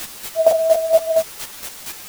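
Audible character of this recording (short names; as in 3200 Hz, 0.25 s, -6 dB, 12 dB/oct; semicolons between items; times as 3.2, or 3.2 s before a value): a quantiser's noise floor 6-bit, dither triangular; chopped level 4.3 Hz, depth 60%, duty 20%; a shimmering, thickened sound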